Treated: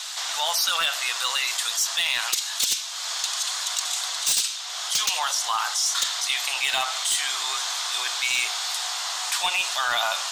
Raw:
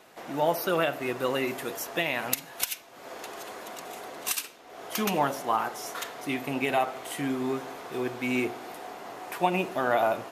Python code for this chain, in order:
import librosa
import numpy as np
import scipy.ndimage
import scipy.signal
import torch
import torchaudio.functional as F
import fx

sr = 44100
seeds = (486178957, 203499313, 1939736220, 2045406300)

y = scipy.signal.sosfilt(scipy.signal.butter(4, 990.0, 'highpass', fs=sr, output='sos'), x)
y = fx.band_shelf(y, sr, hz=5300.0, db=15.5, octaves=1.7)
y = fx.rider(y, sr, range_db=3, speed_s=2.0)
y = np.clip(10.0 ** (18.5 / 20.0) * y, -1.0, 1.0) / 10.0 ** (18.5 / 20.0)
y = fx.env_flatten(y, sr, amount_pct=50)